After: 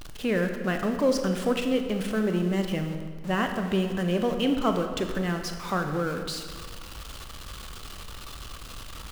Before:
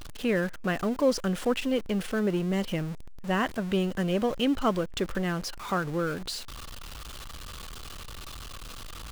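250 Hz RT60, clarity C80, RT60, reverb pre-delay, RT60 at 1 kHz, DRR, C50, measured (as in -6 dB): 2.0 s, 8.0 dB, 1.9 s, 22 ms, 1.8 s, 5.5 dB, 6.5 dB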